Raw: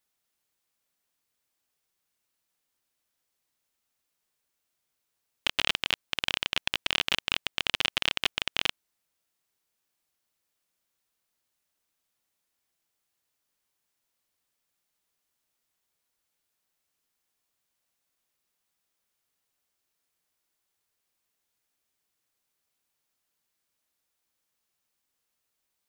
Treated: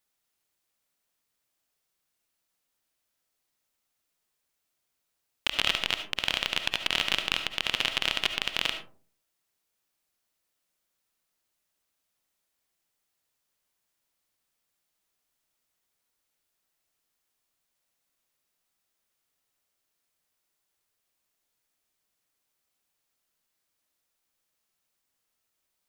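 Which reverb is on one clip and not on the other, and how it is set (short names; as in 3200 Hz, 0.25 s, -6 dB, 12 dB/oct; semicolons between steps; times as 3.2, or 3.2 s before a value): digital reverb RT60 0.45 s, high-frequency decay 0.35×, pre-delay 30 ms, DRR 7 dB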